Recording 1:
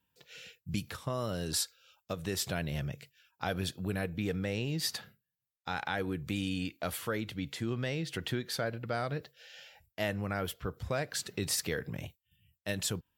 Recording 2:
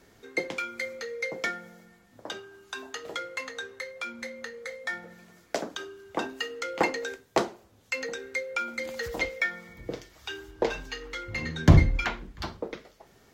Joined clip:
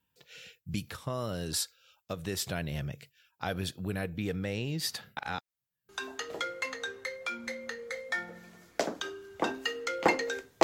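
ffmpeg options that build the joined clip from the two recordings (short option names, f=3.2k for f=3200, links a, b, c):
-filter_complex "[0:a]apad=whole_dur=10.63,atrim=end=10.63,asplit=2[a][b];[a]atrim=end=5.172[c];[b]atrim=start=5.168:end=5.892,asetpts=PTS-STARTPTS,areverse[d];[1:a]atrim=start=2.638:end=7.38[e];[c][d]acrossfade=d=0.004:c1=hsin:c2=hsin[f];[f][e]acrossfade=d=0.004:c1=hsin:c2=hsin"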